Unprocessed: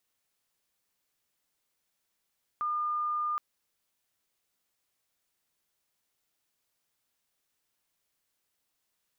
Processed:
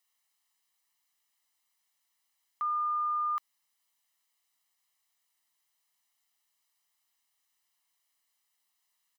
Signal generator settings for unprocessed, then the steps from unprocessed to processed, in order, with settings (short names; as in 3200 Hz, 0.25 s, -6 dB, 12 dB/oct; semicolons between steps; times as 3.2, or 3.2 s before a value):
tone sine 1210 Hz -28 dBFS 0.77 s
HPF 820 Hz 6 dB/oct; comb 1 ms, depth 64%